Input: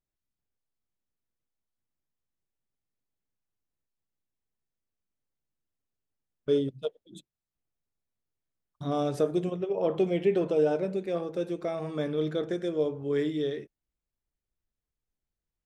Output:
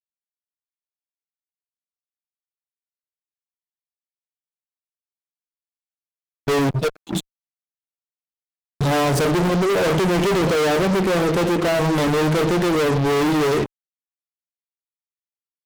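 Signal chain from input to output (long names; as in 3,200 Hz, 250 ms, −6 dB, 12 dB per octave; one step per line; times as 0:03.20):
low-shelf EQ 220 Hz +6.5 dB
fuzz pedal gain 45 dB, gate −51 dBFS
level −4 dB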